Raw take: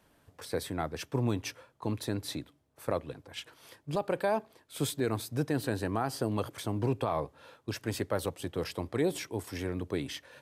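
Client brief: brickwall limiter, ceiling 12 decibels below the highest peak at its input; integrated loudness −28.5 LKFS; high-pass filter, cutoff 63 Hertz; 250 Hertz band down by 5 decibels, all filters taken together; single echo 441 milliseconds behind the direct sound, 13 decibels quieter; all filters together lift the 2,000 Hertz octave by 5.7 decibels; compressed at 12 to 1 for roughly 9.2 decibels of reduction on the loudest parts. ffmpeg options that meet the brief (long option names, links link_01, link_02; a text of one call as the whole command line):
ffmpeg -i in.wav -af "highpass=63,equalizer=frequency=250:width_type=o:gain=-7,equalizer=frequency=2000:width_type=o:gain=7.5,acompressor=threshold=-35dB:ratio=12,alimiter=level_in=8.5dB:limit=-24dB:level=0:latency=1,volume=-8.5dB,aecho=1:1:441:0.224,volume=15.5dB" out.wav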